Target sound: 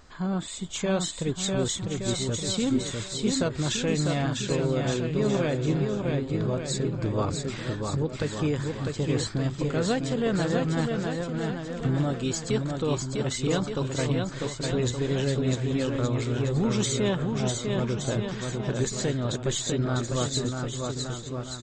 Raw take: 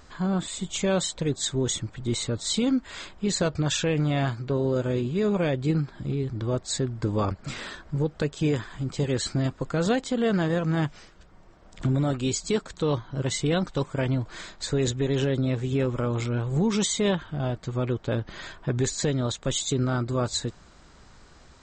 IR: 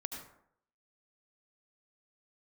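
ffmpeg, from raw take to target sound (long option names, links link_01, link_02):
-af "aecho=1:1:650|1170|1586|1919|2185:0.631|0.398|0.251|0.158|0.1,aeval=exprs='0.316*(cos(1*acos(clip(val(0)/0.316,-1,1)))-cos(1*PI/2))+0.00282*(cos(6*acos(clip(val(0)/0.316,-1,1)))-cos(6*PI/2))':channel_layout=same,volume=-2.5dB"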